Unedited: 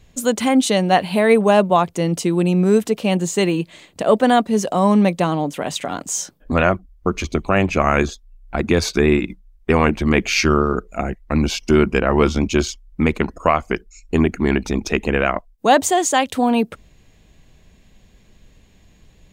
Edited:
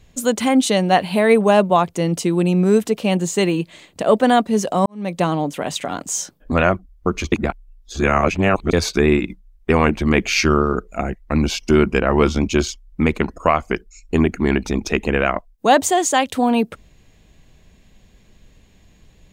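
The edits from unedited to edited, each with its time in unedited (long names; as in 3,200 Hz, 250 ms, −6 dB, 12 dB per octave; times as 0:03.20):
0:04.86–0:05.19: fade in quadratic
0:07.32–0:08.73: reverse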